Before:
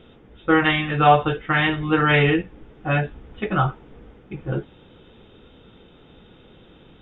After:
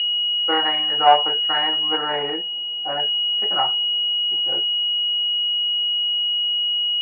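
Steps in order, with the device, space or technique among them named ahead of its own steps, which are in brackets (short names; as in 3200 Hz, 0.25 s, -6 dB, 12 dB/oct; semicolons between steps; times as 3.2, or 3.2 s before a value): toy sound module (decimation joined by straight lines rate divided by 8×; pulse-width modulation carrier 2900 Hz; speaker cabinet 720–3500 Hz, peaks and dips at 840 Hz +6 dB, 1200 Hz -6 dB, 1900 Hz +5 dB, 2700 Hz +5 dB); 1.97–3 high shelf 2500 Hz -10.5 dB; gain +3 dB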